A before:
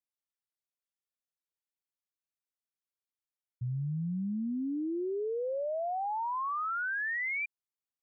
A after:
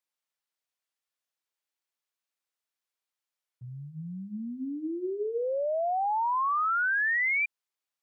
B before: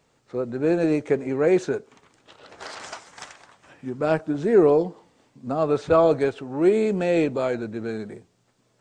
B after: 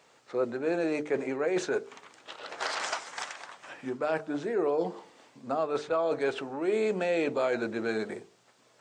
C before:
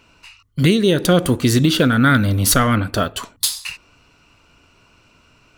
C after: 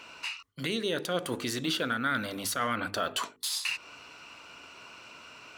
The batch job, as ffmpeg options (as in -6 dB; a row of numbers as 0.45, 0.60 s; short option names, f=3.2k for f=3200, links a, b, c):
-af "areverse,acompressor=threshold=-26dB:ratio=16,areverse,highpass=f=240:p=1,lowshelf=f=320:g=-9.5,bandreject=f=50:t=h:w=6,bandreject=f=100:t=h:w=6,bandreject=f=150:t=h:w=6,bandreject=f=200:t=h:w=6,bandreject=f=250:t=h:w=6,bandreject=f=300:t=h:w=6,bandreject=f=350:t=h:w=6,bandreject=f=400:t=h:w=6,bandreject=f=450:t=h:w=6,alimiter=level_in=2dB:limit=-24dB:level=0:latency=1:release=199,volume=-2dB,highshelf=f=7.6k:g=-6.5,volume=7.5dB"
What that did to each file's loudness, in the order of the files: +5.5, -8.5, -15.0 LU